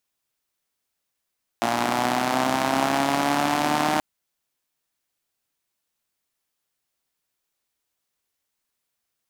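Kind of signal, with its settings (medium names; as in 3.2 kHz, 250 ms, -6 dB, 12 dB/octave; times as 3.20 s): four-cylinder engine model, changing speed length 2.38 s, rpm 3500, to 4600, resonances 280/720 Hz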